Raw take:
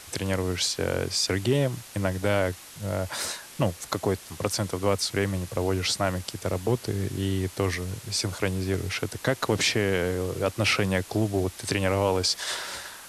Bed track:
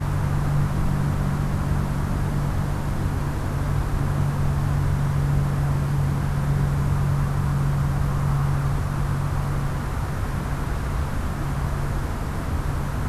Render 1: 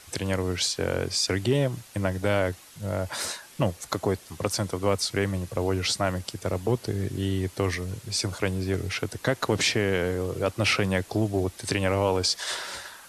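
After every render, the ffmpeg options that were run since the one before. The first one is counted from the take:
-af "afftdn=nr=6:nf=-46"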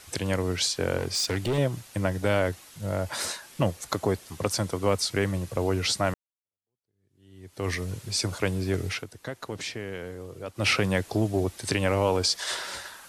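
-filter_complex "[0:a]asettb=1/sr,asplit=3[s0][s1][s2];[s0]atrim=end=0.974[s3];[s1]atrim=start=0.97:end=1.58,asetpts=PTS-STARTPTS,afade=t=in:d=0.004:c=qsin,afade=t=out:st=0.606:d=0.004:c=qsin,asoftclip=type=hard:threshold=0.075[s4];[s2]atrim=start=1.576[s5];[s3][s4]acrossfade=d=0.004:c1=hsin:c2=qsin[s6];[s6][s5]acrossfade=d=0.004:c1=qsin:c2=hsin,asplit=4[s7][s8][s9][s10];[s7]atrim=end=6.14,asetpts=PTS-STARTPTS,afade=t=out:st=6.136:d=0.004:c=hsin[s11];[s8]atrim=start=6.14:end=9.05,asetpts=PTS-STARTPTS,afade=t=in:d=1.57:c=exp,afade=t=out:st=2.78:d=0.13:silence=0.281838[s12];[s9]atrim=start=9.05:end=10.54,asetpts=PTS-STARTPTS,volume=0.282[s13];[s10]atrim=start=10.54,asetpts=PTS-STARTPTS,afade=t=in:d=0.13:silence=0.281838[s14];[s11][s12][s13][s14]concat=n=4:v=0:a=1"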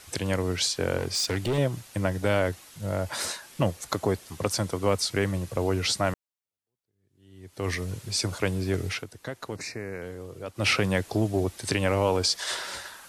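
-filter_complex "[0:a]asettb=1/sr,asplit=3[s0][s1][s2];[s0]atrim=end=9.564[s3];[s1]atrim=start=9.56:end=10.02,asetpts=PTS-STARTPTS,afade=t=in:d=0.004:c=qsin,afade=t=out:st=0.456:d=0.004:c=qsin,asuperstop=centerf=3200:order=4:qfactor=2[s4];[s2]atrim=start=10.016[s5];[s3][s4]acrossfade=d=0.004:c1=hsin:c2=qsin[s6];[s6][s5]acrossfade=d=0.004:c1=qsin:c2=hsin"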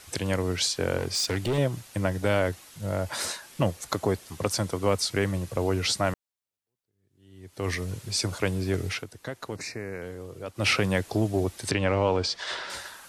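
-filter_complex "[0:a]asettb=1/sr,asplit=3[s0][s1][s2];[s0]atrim=end=11.714[s3];[s1]atrim=start=11.71:end=12.7,asetpts=PTS-STARTPTS,afade=t=in:d=0.004:c=qsin,afade=t=out:st=0.986:d=0.004:c=qsin,lowpass=4200[s4];[s2]atrim=start=12.696[s5];[s3][s4]acrossfade=d=0.004:c1=hsin:c2=qsin[s6];[s6][s5]acrossfade=d=0.004:c1=qsin:c2=hsin"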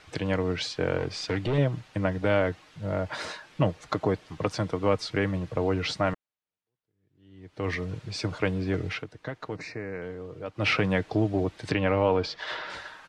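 -af "lowpass=3200,aecho=1:1:6.5:0.33"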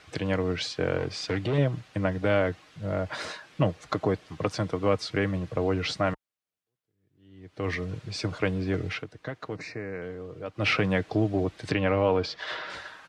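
-af "highpass=43,bandreject=f=900:w=16"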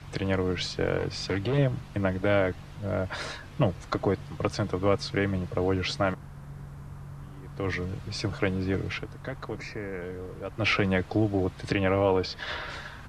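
-filter_complex "[1:a]volume=0.0944[s0];[0:a][s0]amix=inputs=2:normalize=0"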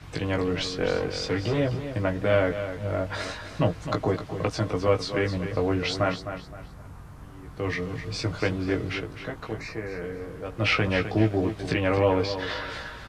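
-filter_complex "[0:a]asplit=2[s0][s1];[s1]adelay=18,volume=0.631[s2];[s0][s2]amix=inputs=2:normalize=0,aecho=1:1:258|516|774:0.316|0.098|0.0304"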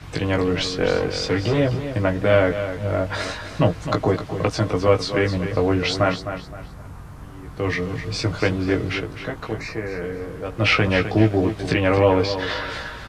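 -af "volume=1.88"

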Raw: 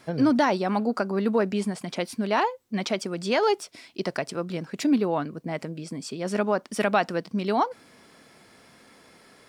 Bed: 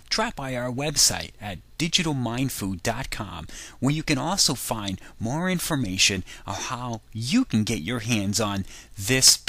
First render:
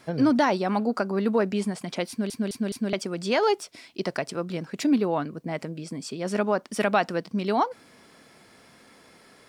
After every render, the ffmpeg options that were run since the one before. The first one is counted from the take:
-filter_complex "[0:a]asplit=5[s0][s1][s2][s3][s4];[s0]atrim=end=2.302[s5];[s1]atrim=start=2.088:end=2.302[s6];[s2]atrim=start=2.088:end=2.302[s7];[s3]atrim=start=2.088:end=2.302[s8];[s4]atrim=start=2.928[s9];[s5][s6]acrossfade=d=0.004:c1=hsin:c2=hsin[s10];[s10][s7]acrossfade=d=0.004:c1=hsin:c2=hsin[s11];[s11][s8]acrossfade=d=0.004:c1=hsin:c2=hsin[s12];[s12][s9]acrossfade=d=0.004:c1=hsin:c2=hsin"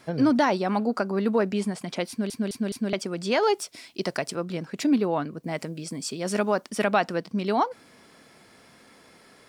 -filter_complex "[0:a]asettb=1/sr,asplit=3[s0][s1][s2];[s0]atrim=end=3.554[s3];[s1]atrim=start=3.55:end=4.35,asetpts=PTS-STARTPTS,afade=t=in:d=0.004:c=qsin,afade=t=out:st=0.796:d=0.004:c=qsin,highshelf=f=5200:g=7.5[s4];[s2]atrim=start=4.346[s5];[s3][s4]acrossfade=d=0.004:c1=hsin:c2=qsin[s6];[s6][s5]acrossfade=d=0.004:c1=qsin:c2=hsin,asettb=1/sr,asplit=3[s7][s8][s9];[s7]atrim=end=5.434[s10];[s8]atrim=start=5.43:end=6.7,asetpts=PTS-STARTPTS,afade=t=in:d=0.004:c=qsin,afade=t=out:st=1.266:d=0.004:c=qsin,highshelf=f=4700:g=9[s11];[s9]atrim=start=6.696[s12];[s10][s11]acrossfade=d=0.004:c1=hsin:c2=qsin[s13];[s13][s12]acrossfade=d=0.004:c1=qsin:c2=hsin"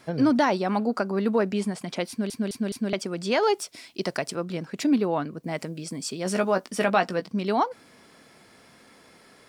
-filter_complex "[0:a]asettb=1/sr,asplit=3[s0][s1][s2];[s0]atrim=end=6.244[s3];[s1]atrim=start=6.24:end=7.27,asetpts=PTS-STARTPTS,afade=t=in:d=0.004:c=qsin,afade=t=out:st=1.026:d=0.004:c=qsin,asplit=2[s4][s5];[s5]adelay=16,volume=0.398[s6];[s4][s6]amix=inputs=2:normalize=0,atrim=end_sample=45423[s7];[s2]atrim=start=7.266[s8];[s3][s7]acrossfade=d=0.004:c1=hsin:c2=qsin[s9];[s9][s8]acrossfade=d=0.004:c1=qsin:c2=hsin"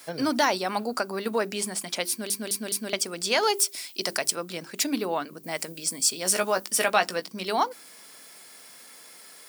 -af "aemphasis=mode=production:type=riaa,bandreject=f=50:t=h:w=6,bandreject=f=100:t=h:w=6,bandreject=f=150:t=h:w=6,bandreject=f=200:t=h:w=6,bandreject=f=250:t=h:w=6,bandreject=f=300:t=h:w=6,bandreject=f=350:t=h:w=6,bandreject=f=400:t=h:w=6"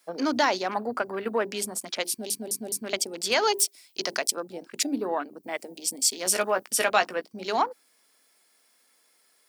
-af "highpass=f=210:w=0.5412,highpass=f=210:w=1.3066,afwtdn=0.0141"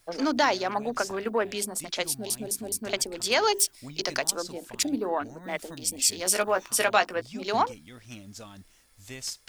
-filter_complex "[1:a]volume=0.1[s0];[0:a][s0]amix=inputs=2:normalize=0"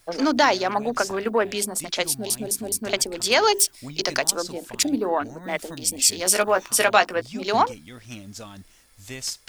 -af "volume=1.78,alimiter=limit=0.794:level=0:latency=1"

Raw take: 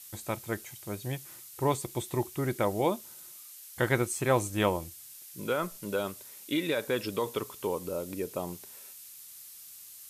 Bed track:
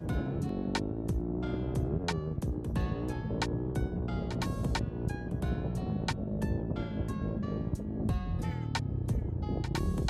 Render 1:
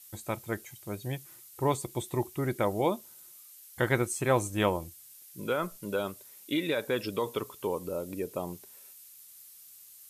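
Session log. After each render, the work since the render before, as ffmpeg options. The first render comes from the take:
-af "afftdn=nr=6:nf=-49"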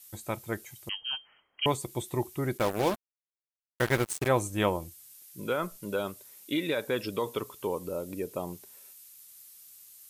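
-filter_complex "[0:a]asettb=1/sr,asplit=3[s0][s1][s2];[s0]atrim=end=0.894[s3];[s1]atrim=start=0.89:end=1.66,asetpts=PTS-STARTPTS,afade=t=in:d=0.004:c=qsin,afade=t=out:st=0.766:d=0.004:c=qsin,lowpass=f=2800:t=q:w=0.5098,lowpass=f=2800:t=q:w=0.6013,lowpass=f=2800:t=q:w=0.9,lowpass=f=2800:t=q:w=2.563,afreqshift=-3300[s4];[s2]atrim=start=1.656[s5];[s3][s4]acrossfade=d=0.004:c1=hsin:c2=qsin[s6];[s6][s5]acrossfade=d=0.004:c1=qsin:c2=hsin,asplit=3[s7][s8][s9];[s7]afade=t=out:st=2.57:d=0.02[s10];[s8]acrusher=bits=4:mix=0:aa=0.5,afade=t=in:st=2.57:d=0.02,afade=t=out:st=4.27:d=0.02[s11];[s9]afade=t=in:st=4.27:d=0.02[s12];[s10][s11][s12]amix=inputs=3:normalize=0"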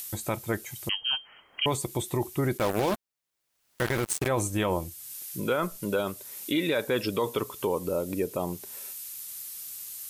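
-filter_complex "[0:a]asplit=2[s0][s1];[s1]acompressor=mode=upward:threshold=0.0355:ratio=2.5,volume=0.841[s2];[s0][s2]amix=inputs=2:normalize=0,alimiter=limit=0.141:level=0:latency=1:release=15"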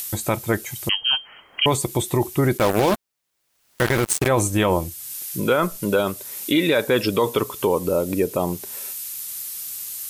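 -af "volume=2.51"

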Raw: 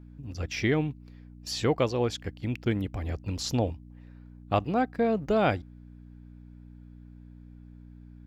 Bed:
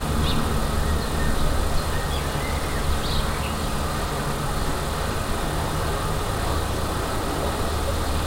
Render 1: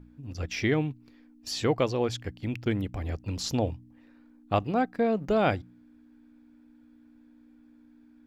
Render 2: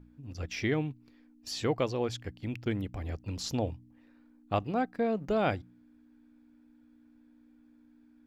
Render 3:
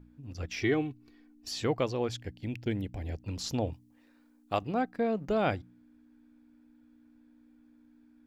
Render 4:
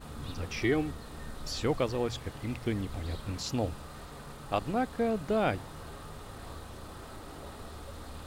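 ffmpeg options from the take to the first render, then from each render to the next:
-af "bandreject=f=60:t=h:w=4,bandreject=f=120:t=h:w=4,bandreject=f=180:t=h:w=4"
-af "volume=0.631"
-filter_complex "[0:a]asettb=1/sr,asplit=3[s0][s1][s2];[s0]atrim=end=0.614[s3];[s1]atrim=start=0.61:end=1.49,asetpts=PTS-STARTPTS,afade=t=in:d=0.004:c=qsin,afade=t=out:st=0.876:d=0.004:c=qsin,aecho=1:1:2.7:0.65,atrim=end_sample=38808[s4];[s2]atrim=start=1.486[s5];[s3][s4]acrossfade=d=0.004:c1=hsin:c2=qsin[s6];[s6][s5]acrossfade=d=0.004:c1=qsin:c2=hsin,asettb=1/sr,asplit=3[s7][s8][s9];[s7]atrim=end=2.164[s10];[s8]atrim=start=2.16:end=3.22,asetpts=PTS-STARTPTS,afade=t=in:d=0.004:c=qsin,afade=t=out:st=1.056:d=0.004:c=qsin,equalizer=f=1200:t=o:w=0.34:g=-15[s11];[s9]atrim=start=3.216[s12];[s10][s11]acrossfade=d=0.004:c1=hsin:c2=qsin[s13];[s13][s12]acrossfade=d=0.004:c1=qsin:c2=hsin,asettb=1/sr,asplit=3[s14][s15][s16];[s14]atrim=end=3.734[s17];[s15]atrim=start=3.73:end=4.62,asetpts=PTS-STARTPTS,afade=t=in:d=0.004:c=qsin,afade=t=out:st=0.886:d=0.004:c=qsin,bass=f=250:g=-7,treble=f=4000:g=8[s18];[s16]atrim=start=4.616[s19];[s17][s18]acrossfade=d=0.004:c1=hsin:c2=qsin[s20];[s20][s19]acrossfade=d=0.004:c1=qsin:c2=hsin"
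-filter_complex "[1:a]volume=0.1[s0];[0:a][s0]amix=inputs=2:normalize=0"

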